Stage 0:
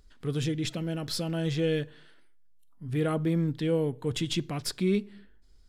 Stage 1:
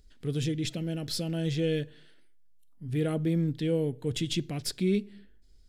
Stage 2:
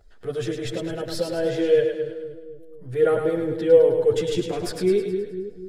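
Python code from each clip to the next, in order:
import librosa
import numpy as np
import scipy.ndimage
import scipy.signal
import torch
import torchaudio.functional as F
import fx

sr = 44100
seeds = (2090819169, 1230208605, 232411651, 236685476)

y1 = fx.peak_eq(x, sr, hz=1100.0, db=-10.5, octaves=1.0)
y2 = fx.band_shelf(y1, sr, hz=820.0, db=12.5, octaves=2.5)
y2 = fx.chorus_voices(y2, sr, voices=6, hz=0.52, base_ms=10, depth_ms=1.7, mix_pct=55)
y2 = fx.echo_split(y2, sr, split_hz=430.0, low_ms=249, high_ms=105, feedback_pct=52, wet_db=-5.5)
y2 = F.gain(torch.from_numpy(y2), 2.0).numpy()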